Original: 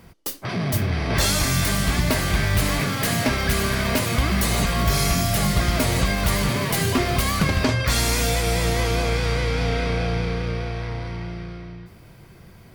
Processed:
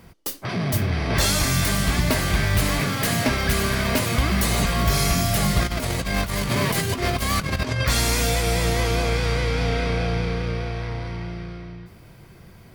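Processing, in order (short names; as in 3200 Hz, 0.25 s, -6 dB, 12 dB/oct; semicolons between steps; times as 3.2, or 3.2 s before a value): 5.62–7.84 negative-ratio compressor -23 dBFS, ratio -0.5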